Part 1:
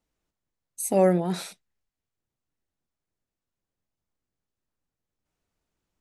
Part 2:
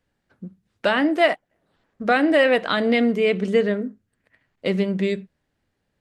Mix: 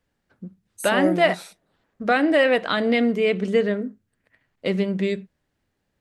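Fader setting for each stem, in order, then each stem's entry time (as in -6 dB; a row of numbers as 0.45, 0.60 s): -3.5, -1.0 dB; 0.00, 0.00 s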